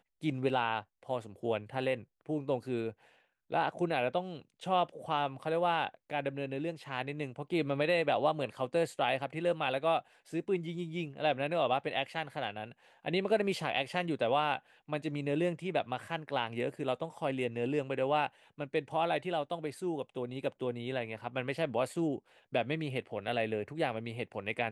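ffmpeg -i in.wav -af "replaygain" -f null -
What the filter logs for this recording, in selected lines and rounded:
track_gain = +13.2 dB
track_peak = 0.109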